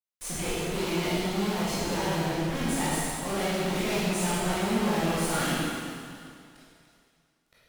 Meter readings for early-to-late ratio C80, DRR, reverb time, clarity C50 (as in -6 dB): -2.0 dB, -10.5 dB, 2.3 s, -5.0 dB